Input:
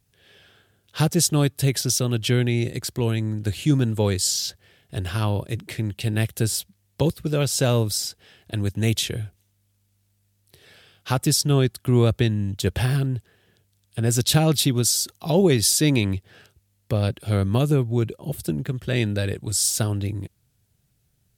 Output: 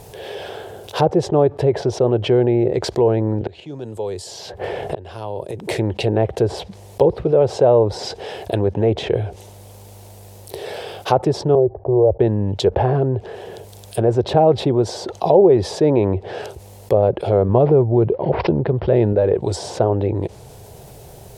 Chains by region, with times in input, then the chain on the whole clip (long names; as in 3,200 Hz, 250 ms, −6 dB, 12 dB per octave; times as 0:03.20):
0:03.41–0:05.67: gate with flip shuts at −24 dBFS, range −32 dB + treble cut that deepens with the level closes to 2,900 Hz, closed at −38.5 dBFS + multiband upward and downward compressor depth 100%
0:11.55–0:12.20: Bessel low-pass filter 810 Hz, order 8 + phaser with its sweep stopped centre 570 Hz, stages 4
0:17.49–0:19.13: low-pass filter 11,000 Hz 24 dB per octave + bass and treble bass +5 dB, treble +5 dB + bad sample-rate conversion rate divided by 4×, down none, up filtered
whole clip: treble cut that deepens with the level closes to 1,400 Hz, closed at −19.5 dBFS; flat-topped bell 600 Hz +15.5 dB; envelope flattener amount 50%; level −6.5 dB